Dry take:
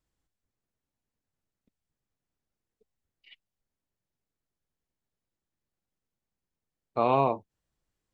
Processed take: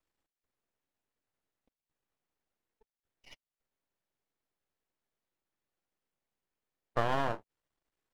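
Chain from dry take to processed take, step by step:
bass and treble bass −11 dB, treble −8 dB
downward compressor 5 to 1, threshold −27 dBFS, peak gain reduction 7.5 dB
half-wave rectification
level +5 dB

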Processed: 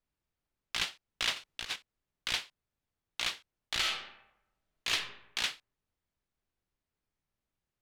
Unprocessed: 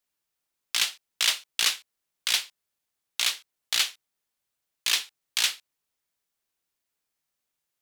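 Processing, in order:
0:01.36–0:01.76: compressor whose output falls as the input rises −29 dBFS, ratio −0.5
RIAA equalisation playback
0:03.79–0:04.91: thrown reverb, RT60 0.84 s, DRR −3 dB
level −2.5 dB

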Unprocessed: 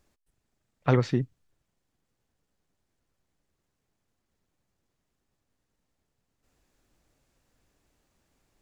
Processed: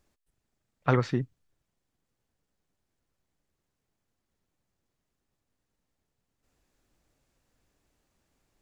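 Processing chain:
dynamic equaliser 1,300 Hz, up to +6 dB, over −42 dBFS, Q 1.2
level −2.5 dB

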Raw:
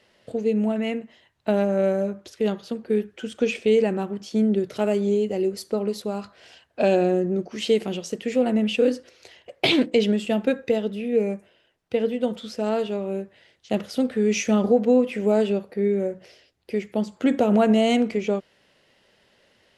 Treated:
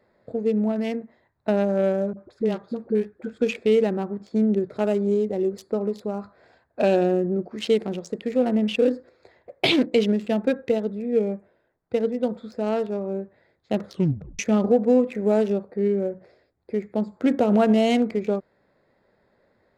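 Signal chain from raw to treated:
adaptive Wiener filter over 15 samples
0:02.13–0:03.41: all-pass dispersion highs, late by 48 ms, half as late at 540 Hz
0:13.87: tape stop 0.52 s

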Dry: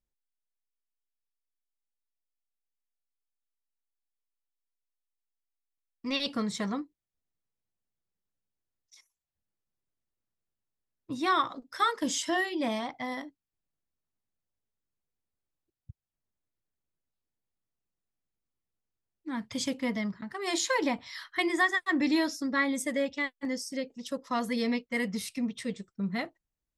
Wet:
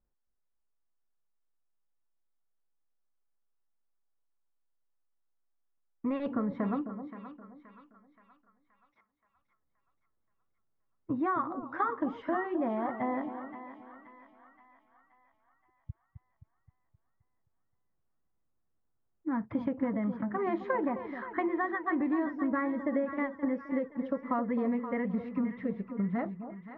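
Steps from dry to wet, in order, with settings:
low-pass filter 1,500 Hz 24 dB per octave
downward compressor, threshold −34 dBFS, peak gain reduction 11 dB
echo with a time of its own for lows and highs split 970 Hz, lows 262 ms, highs 525 ms, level −10 dB
level +6 dB

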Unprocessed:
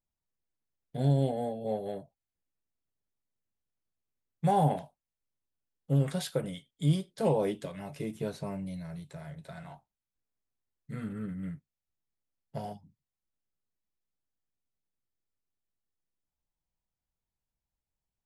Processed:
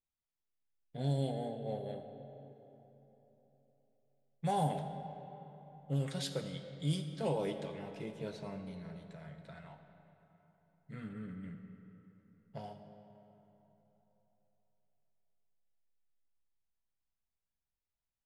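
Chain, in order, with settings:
first-order pre-emphasis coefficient 0.8
low-pass that shuts in the quiet parts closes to 2,600 Hz, open at −28.5 dBFS
comb and all-pass reverb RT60 3.7 s, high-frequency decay 0.6×, pre-delay 20 ms, DRR 7.5 dB
level +6 dB

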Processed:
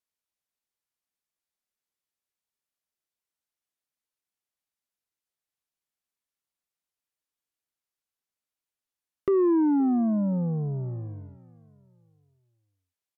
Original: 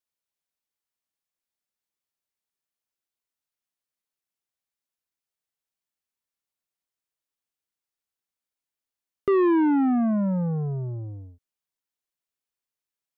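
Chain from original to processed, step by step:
repeating echo 521 ms, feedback 38%, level −22 dB
treble cut that deepens with the level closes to 790 Hz, closed at −25.5 dBFS
level −1.5 dB

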